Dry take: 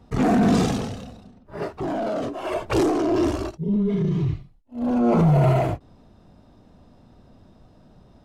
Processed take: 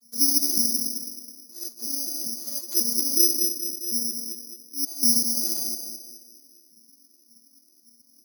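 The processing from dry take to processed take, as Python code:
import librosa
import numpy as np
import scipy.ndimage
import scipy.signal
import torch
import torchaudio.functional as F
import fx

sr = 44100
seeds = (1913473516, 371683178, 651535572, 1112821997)

y = fx.vocoder_arp(x, sr, chord='minor triad', root=58, every_ms=186)
y = fx.high_shelf(y, sr, hz=6000.0, db=-10.5)
y = fx.echo_banded(y, sr, ms=212, feedback_pct=47, hz=410.0, wet_db=-5)
y = (np.kron(scipy.signal.resample_poly(y, 1, 8), np.eye(8)[0]) * 8)[:len(y)]
y = fx.peak_eq(y, sr, hz=740.0, db=-14.5, octaves=1.7)
y = F.gain(torch.from_numpy(y), -12.5).numpy()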